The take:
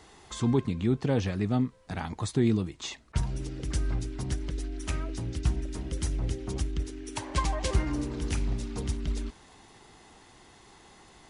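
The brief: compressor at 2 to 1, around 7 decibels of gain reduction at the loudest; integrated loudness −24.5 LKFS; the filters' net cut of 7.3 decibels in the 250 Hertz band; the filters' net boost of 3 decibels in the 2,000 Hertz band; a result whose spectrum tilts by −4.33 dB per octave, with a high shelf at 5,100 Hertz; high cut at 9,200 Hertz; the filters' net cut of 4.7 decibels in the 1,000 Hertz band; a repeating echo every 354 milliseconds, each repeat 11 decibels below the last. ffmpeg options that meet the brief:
ffmpeg -i in.wav -af "lowpass=9200,equalizer=frequency=250:width_type=o:gain=-9,equalizer=frequency=1000:width_type=o:gain=-6.5,equalizer=frequency=2000:width_type=o:gain=4.5,highshelf=frequency=5100:gain=7,acompressor=threshold=-33dB:ratio=2,aecho=1:1:354|708|1062:0.282|0.0789|0.0221,volume=12dB" out.wav

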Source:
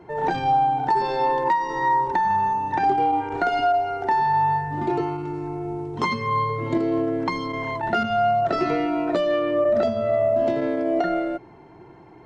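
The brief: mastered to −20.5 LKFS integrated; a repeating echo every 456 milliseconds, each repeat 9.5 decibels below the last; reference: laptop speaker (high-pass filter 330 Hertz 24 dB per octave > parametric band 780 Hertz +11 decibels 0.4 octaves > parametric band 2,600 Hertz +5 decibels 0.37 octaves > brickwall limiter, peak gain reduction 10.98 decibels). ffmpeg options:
ffmpeg -i in.wav -af "highpass=frequency=330:width=0.5412,highpass=frequency=330:width=1.3066,equalizer=frequency=780:width_type=o:width=0.4:gain=11,equalizer=frequency=2600:width_type=o:width=0.37:gain=5,aecho=1:1:456|912|1368|1824:0.335|0.111|0.0365|0.012,alimiter=limit=-13dB:level=0:latency=1" out.wav

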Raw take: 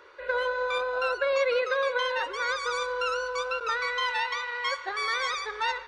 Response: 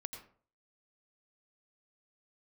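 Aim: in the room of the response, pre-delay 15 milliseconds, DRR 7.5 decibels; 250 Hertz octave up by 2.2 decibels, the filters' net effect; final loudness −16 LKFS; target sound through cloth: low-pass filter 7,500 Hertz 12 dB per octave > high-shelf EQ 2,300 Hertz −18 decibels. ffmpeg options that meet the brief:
-filter_complex "[0:a]equalizer=frequency=250:width_type=o:gain=5,asplit=2[link_01][link_02];[1:a]atrim=start_sample=2205,adelay=15[link_03];[link_02][link_03]afir=irnorm=-1:irlink=0,volume=-5dB[link_04];[link_01][link_04]amix=inputs=2:normalize=0,lowpass=7500,highshelf=frequency=2300:gain=-18,volume=15dB"

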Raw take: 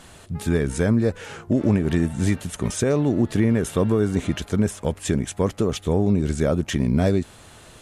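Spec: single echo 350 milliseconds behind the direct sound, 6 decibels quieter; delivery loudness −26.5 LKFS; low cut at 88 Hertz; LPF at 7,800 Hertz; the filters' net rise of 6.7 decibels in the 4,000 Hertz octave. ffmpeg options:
ffmpeg -i in.wav -af "highpass=88,lowpass=7800,equalizer=frequency=4000:width_type=o:gain=9,aecho=1:1:350:0.501,volume=-4.5dB" out.wav

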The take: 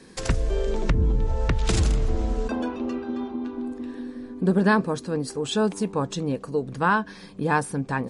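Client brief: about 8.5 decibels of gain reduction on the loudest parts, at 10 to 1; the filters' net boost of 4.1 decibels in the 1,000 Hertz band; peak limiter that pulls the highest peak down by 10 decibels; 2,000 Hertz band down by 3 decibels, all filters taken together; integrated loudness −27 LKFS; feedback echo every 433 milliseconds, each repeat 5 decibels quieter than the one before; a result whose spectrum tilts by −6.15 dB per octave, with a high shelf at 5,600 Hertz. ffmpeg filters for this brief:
ffmpeg -i in.wav -af "equalizer=frequency=1000:width_type=o:gain=6.5,equalizer=frequency=2000:width_type=o:gain=-7,highshelf=frequency=5600:gain=-7,acompressor=threshold=-23dB:ratio=10,alimiter=limit=-23dB:level=0:latency=1,aecho=1:1:433|866|1299|1732|2165|2598|3031:0.562|0.315|0.176|0.0988|0.0553|0.031|0.0173,volume=4.5dB" out.wav

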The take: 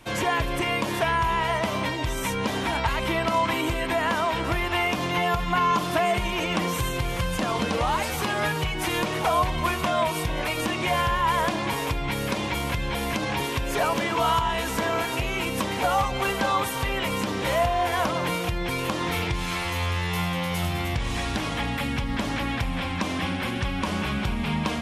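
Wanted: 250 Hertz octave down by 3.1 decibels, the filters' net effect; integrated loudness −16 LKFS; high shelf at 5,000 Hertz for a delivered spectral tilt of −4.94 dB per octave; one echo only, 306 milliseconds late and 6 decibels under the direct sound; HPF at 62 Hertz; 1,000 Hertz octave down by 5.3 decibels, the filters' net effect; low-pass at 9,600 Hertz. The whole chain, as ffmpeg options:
ffmpeg -i in.wav -af "highpass=62,lowpass=9600,equalizer=frequency=250:width_type=o:gain=-4,equalizer=frequency=1000:width_type=o:gain=-6,highshelf=frequency=5000:gain=-7.5,aecho=1:1:306:0.501,volume=12dB" out.wav

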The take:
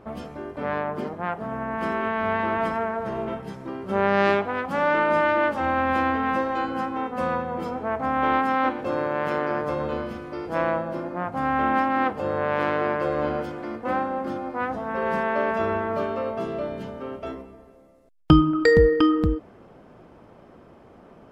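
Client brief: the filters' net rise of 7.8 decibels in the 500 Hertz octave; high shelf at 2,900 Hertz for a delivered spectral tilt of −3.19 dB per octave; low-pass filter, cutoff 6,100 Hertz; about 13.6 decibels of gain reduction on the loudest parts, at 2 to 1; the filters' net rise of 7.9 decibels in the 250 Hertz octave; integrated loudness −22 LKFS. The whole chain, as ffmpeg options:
ffmpeg -i in.wav -af "lowpass=6100,equalizer=frequency=250:width_type=o:gain=7.5,equalizer=frequency=500:width_type=o:gain=7.5,highshelf=frequency=2900:gain=-4.5,acompressor=threshold=-30dB:ratio=2,volume=5.5dB" out.wav

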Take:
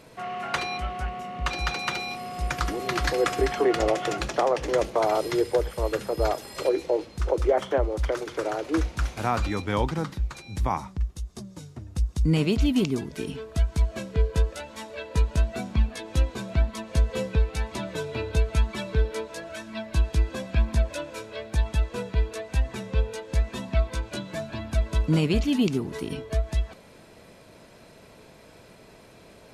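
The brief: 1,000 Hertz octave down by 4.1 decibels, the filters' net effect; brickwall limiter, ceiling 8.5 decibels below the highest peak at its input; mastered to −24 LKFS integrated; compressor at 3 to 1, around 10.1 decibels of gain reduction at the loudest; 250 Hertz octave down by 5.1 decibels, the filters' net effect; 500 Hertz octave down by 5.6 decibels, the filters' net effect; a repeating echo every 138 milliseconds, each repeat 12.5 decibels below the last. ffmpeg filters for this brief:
ffmpeg -i in.wav -af "equalizer=frequency=250:width_type=o:gain=-5.5,equalizer=frequency=500:width_type=o:gain=-4.5,equalizer=frequency=1000:width_type=o:gain=-3.5,acompressor=threshold=-31dB:ratio=3,alimiter=level_in=2dB:limit=-24dB:level=0:latency=1,volume=-2dB,aecho=1:1:138|276|414:0.237|0.0569|0.0137,volume=13dB" out.wav

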